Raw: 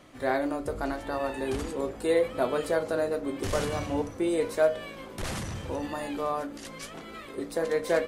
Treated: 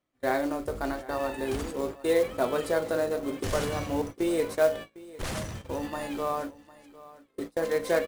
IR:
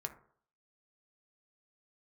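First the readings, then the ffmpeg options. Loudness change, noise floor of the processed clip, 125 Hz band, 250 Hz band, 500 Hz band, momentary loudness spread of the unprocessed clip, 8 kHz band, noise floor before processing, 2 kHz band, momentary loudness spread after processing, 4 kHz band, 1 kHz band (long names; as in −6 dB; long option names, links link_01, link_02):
0.0 dB, −66 dBFS, −0.5 dB, 0.0 dB, 0.0 dB, 12 LU, +0.5 dB, −44 dBFS, 0.0 dB, 10 LU, 0.0 dB, 0.0 dB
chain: -af "agate=range=-29dB:threshold=-35dB:ratio=16:detection=peak,aecho=1:1:754:0.112,acrusher=bits=5:mode=log:mix=0:aa=0.000001"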